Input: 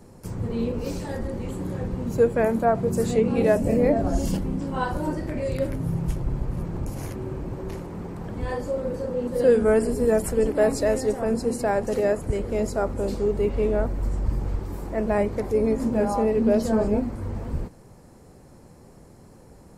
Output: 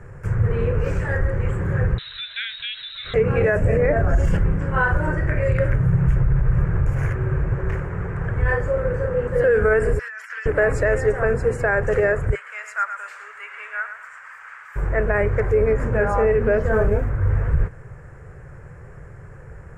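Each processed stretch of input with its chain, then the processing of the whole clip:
1.98–3.14 compressor 4:1, threshold -23 dBFS + inverted band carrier 4000 Hz
9.99–10.46 HPF 1400 Hz 24 dB/oct + resonant high shelf 6800 Hz -7 dB, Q 3 + negative-ratio compressor -46 dBFS
12.35–14.76 HPF 1200 Hz 24 dB/oct + lo-fi delay 0.113 s, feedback 35%, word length 10-bit, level -8.5 dB
16.59–17.3 LPF 2000 Hz 6 dB/oct + modulation noise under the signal 30 dB
whole clip: EQ curve 140 Hz 0 dB, 240 Hz -23 dB, 430 Hz -6 dB, 860 Hz -11 dB, 1600 Hz +6 dB, 2700 Hz -8 dB, 4100 Hz -26 dB, 7400 Hz -16 dB, 11000 Hz -26 dB; maximiser +21 dB; gain -8.5 dB

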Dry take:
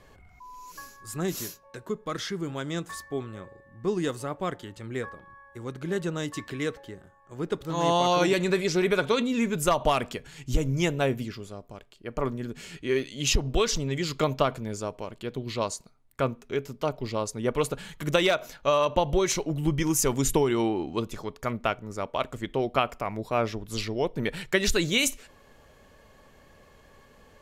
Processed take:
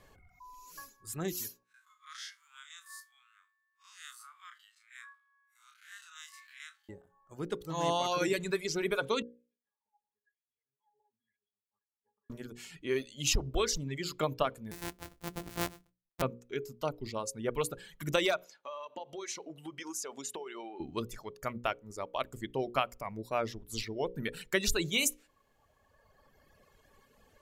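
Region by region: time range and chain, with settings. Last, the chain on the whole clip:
1.63–6.89 time blur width 0.107 s + steep high-pass 1200 Hz 48 dB/oct
9.22–12.3 wah 1 Hz 790–2600 Hz, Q 13 + compressor 20:1, threshold -53 dBFS + octave resonator G#, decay 0.21 s
14.71–16.22 sample sorter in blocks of 256 samples + expander -53 dBFS + doubler 26 ms -12 dB
18.44–20.8 BPF 410–7200 Hz + compressor 4:1, threshold -32 dBFS
whole clip: reverb removal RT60 1.9 s; high shelf 9300 Hz +8 dB; notches 60/120/180/240/300/360/420/480/540 Hz; gain -5.5 dB

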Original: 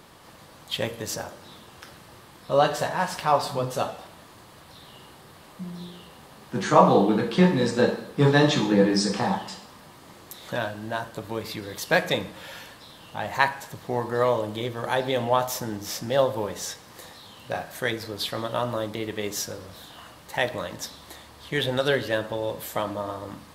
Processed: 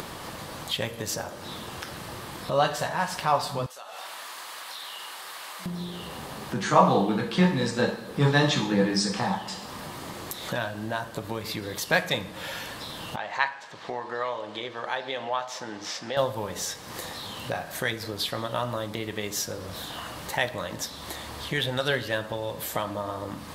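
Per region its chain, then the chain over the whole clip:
3.66–5.66 HPF 1000 Hz + compressor 5:1, threshold -45 dBFS
13.16–16.17 HPF 1100 Hz 6 dB/oct + air absorption 130 m
whole clip: dynamic EQ 380 Hz, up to -6 dB, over -33 dBFS, Q 0.82; upward compressor, threshold -27 dBFS

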